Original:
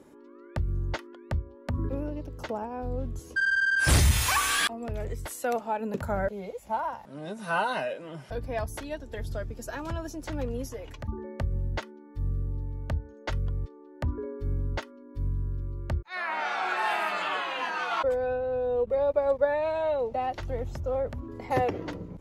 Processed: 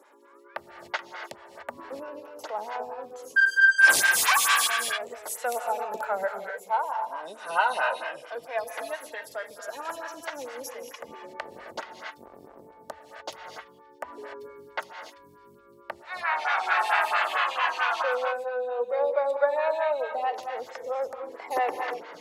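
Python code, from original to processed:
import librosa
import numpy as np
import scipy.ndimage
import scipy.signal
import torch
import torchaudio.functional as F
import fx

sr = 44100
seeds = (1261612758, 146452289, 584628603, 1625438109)

y = fx.octave_divider(x, sr, octaves=1, level_db=2.0, at=(10.69, 12.71))
y = scipy.signal.sosfilt(scipy.signal.butter(2, 800.0, 'highpass', fs=sr, output='sos'), y)
y = fx.rev_gated(y, sr, seeds[0], gate_ms=320, shape='rising', drr_db=4.5)
y = fx.stagger_phaser(y, sr, hz=4.5)
y = y * librosa.db_to_amplitude(7.5)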